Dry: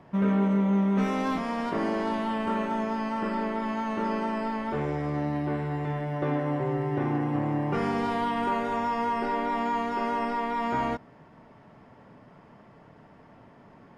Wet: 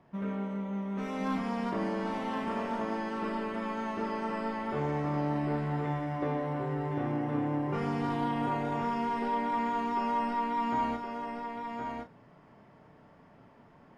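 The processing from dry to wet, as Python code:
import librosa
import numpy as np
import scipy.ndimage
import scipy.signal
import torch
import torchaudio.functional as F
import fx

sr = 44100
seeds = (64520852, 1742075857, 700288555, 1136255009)

y = fx.rider(x, sr, range_db=10, speed_s=0.5)
y = fx.doubler(y, sr, ms=34.0, db=-8.0)
y = y + 10.0 ** (-5.0 / 20.0) * np.pad(y, (int(1067 * sr / 1000.0), 0))[:len(y)]
y = y * librosa.db_to_amplitude(-6.5)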